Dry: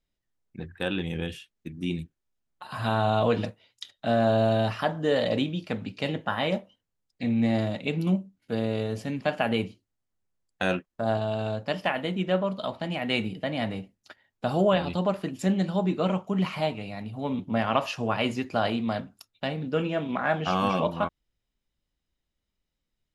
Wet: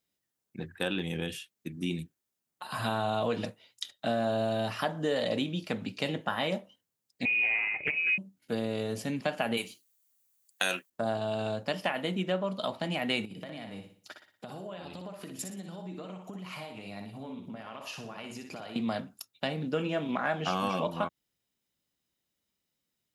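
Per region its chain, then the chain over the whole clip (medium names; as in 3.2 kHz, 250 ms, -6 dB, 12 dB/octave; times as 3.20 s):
7.25–8.18 s: high-pass 150 Hz + frequency inversion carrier 2.7 kHz + loudspeaker Doppler distortion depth 0.32 ms
9.57–10.90 s: tilt EQ +4 dB/octave + band-stop 5.2 kHz, Q 13
13.25–18.76 s: compression 16:1, threshold -38 dBFS + feedback delay 60 ms, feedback 39%, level -6.5 dB
whole clip: compression 2.5:1, threshold -28 dBFS; high-pass 130 Hz 12 dB/octave; treble shelf 6.5 kHz +11 dB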